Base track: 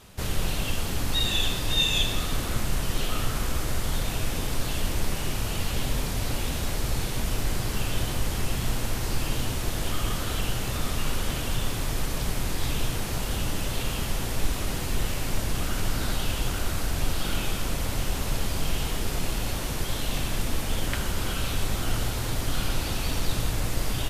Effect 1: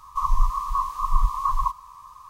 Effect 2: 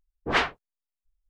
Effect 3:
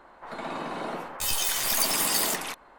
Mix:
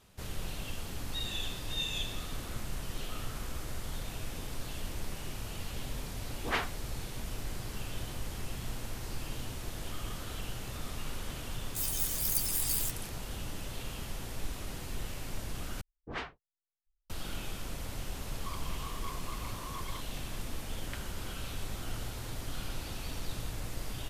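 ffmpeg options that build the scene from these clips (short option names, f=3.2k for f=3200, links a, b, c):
-filter_complex "[2:a]asplit=2[a][b];[0:a]volume=-11.5dB[c];[3:a]aderivative[d];[b]lowshelf=f=210:g=9[e];[1:a]aeval=exprs='0.1*(abs(mod(val(0)/0.1+3,4)-2)-1)':c=same[f];[c]asplit=2[g][h];[g]atrim=end=15.814[i];[e]atrim=end=1.29,asetpts=PTS-STARTPTS,volume=-16.5dB[j];[h]atrim=start=17.096[k];[a]atrim=end=1.29,asetpts=PTS-STARTPTS,volume=-9dB,afade=t=in:d=0.004:c=hsin,afade=t=out:st=1.286:d=0.004:c=hsin,adelay=272538S[l];[d]atrim=end=2.78,asetpts=PTS-STARTPTS,volume=-8dB,afade=t=in:d=0.004:c=hsin,afade=t=out:st=2.776:d=0.004:c=hsin,adelay=10550[m];[f]atrim=end=2.29,asetpts=PTS-STARTPTS,volume=-18dB,afade=t=in:d=0.004:c=hsin,afade=t=out:st=2.286:d=0.004:c=hsin,adelay=18290[n];[i][j]acrossfade=d=0.004:c1=hsin:c2=hsin[o];[o][k]acrossfade=d=0.004:c1=hsin:c2=hsin[p];[p][l][m][n]amix=inputs=4:normalize=0"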